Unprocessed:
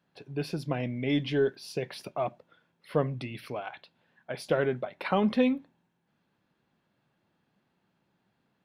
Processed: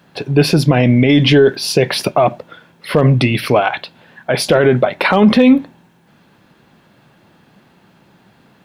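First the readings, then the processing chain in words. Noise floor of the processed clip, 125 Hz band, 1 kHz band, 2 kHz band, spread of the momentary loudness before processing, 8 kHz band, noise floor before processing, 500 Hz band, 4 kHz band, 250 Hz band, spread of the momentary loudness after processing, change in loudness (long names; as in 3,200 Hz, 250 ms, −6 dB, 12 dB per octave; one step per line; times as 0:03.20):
−52 dBFS, +20.5 dB, +17.0 dB, +19.0 dB, 12 LU, +24.0 dB, −76 dBFS, +16.5 dB, +21.5 dB, +18.0 dB, 9 LU, +17.5 dB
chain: hard clipping −14.5 dBFS, distortion −30 dB
boost into a limiter +25 dB
level −1 dB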